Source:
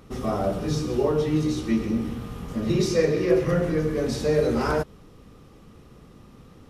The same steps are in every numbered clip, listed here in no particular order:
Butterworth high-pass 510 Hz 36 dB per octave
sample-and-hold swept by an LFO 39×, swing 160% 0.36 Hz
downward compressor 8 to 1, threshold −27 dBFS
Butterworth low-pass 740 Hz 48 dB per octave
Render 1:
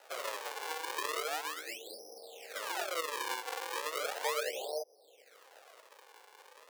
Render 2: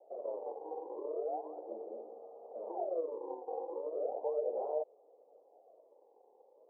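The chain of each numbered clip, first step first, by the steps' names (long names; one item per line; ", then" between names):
downward compressor, then Butterworth low-pass, then sample-and-hold swept by an LFO, then Butterworth high-pass
sample-and-hold swept by an LFO, then Butterworth high-pass, then downward compressor, then Butterworth low-pass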